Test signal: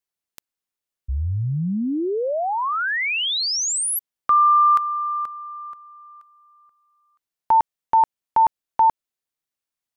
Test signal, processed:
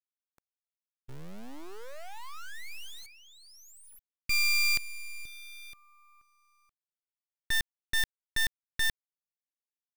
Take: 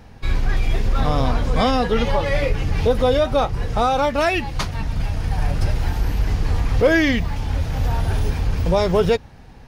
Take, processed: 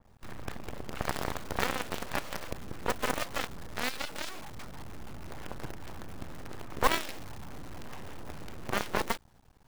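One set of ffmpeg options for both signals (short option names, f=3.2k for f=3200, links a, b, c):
-af "highshelf=f=1.9k:t=q:w=1.5:g=-11.5,acrusher=bits=6:dc=4:mix=0:aa=0.000001,aeval=exprs='0.531*(cos(1*acos(clip(val(0)/0.531,-1,1)))-cos(1*PI/2))+0.237*(cos(3*acos(clip(val(0)/0.531,-1,1)))-cos(3*PI/2))':c=same,aeval=exprs='abs(val(0))':c=same,adynamicequalizer=threshold=0.0141:dfrequency=2900:dqfactor=0.7:tfrequency=2900:tqfactor=0.7:attack=5:release=100:ratio=0.375:range=2:mode=boostabove:tftype=highshelf,volume=-5.5dB"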